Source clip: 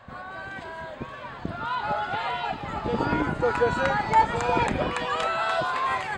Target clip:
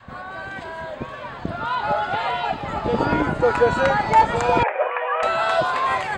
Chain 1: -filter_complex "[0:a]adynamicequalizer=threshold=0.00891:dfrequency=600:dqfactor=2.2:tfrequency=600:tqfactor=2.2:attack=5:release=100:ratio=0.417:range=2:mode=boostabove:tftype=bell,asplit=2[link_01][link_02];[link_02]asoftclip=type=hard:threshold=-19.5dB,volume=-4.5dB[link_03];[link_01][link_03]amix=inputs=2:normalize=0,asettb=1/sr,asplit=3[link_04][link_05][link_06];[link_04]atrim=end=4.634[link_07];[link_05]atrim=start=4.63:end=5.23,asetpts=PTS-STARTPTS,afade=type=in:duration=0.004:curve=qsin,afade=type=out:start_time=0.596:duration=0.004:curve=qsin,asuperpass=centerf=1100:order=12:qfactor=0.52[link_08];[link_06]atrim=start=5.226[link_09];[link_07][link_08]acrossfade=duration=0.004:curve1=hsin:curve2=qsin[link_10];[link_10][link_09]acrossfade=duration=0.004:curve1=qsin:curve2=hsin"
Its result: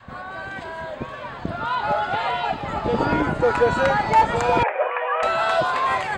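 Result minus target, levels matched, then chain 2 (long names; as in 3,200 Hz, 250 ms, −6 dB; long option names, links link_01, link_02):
hard clipping: distortion +11 dB
-filter_complex "[0:a]adynamicequalizer=threshold=0.00891:dfrequency=600:dqfactor=2.2:tfrequency=600:tqfactor=2.2:attack=5:release=100:ratio=0.417:range=2:mode=boostabove:tftype=bell,asplit=2[link_01][link_02];[link_02]asoftclip=type=hard:threshold=-13.5dB,volume=-4.5dB[link_03];[link_01][link_03]amix=inputs=2:normalize=0,asettb=1/sr,asplit=3[link_04][link_05][link_06];[link_04]atrim=end=4.634[link_07];[link_05]atrim=start=4.63:end=5.23,asetpts=PTS-STARTPTS,afade=type=in:duration=0.004:curve=qsin,afade=type=out:start_time=0.596:duration=0.004:curve=qsin,asuperpass=centerf=1100:order=12:qfactor=0.52[link_08];[link_06]atrim=start=5.226[link_09];[link_07][link_08]acrossfade=duration=0.004:curve1=hsin:curve2=qsin[link_10];[link_10][link_09]acrossfade=duration=0.004:curve1=qsin:curve2=hsin"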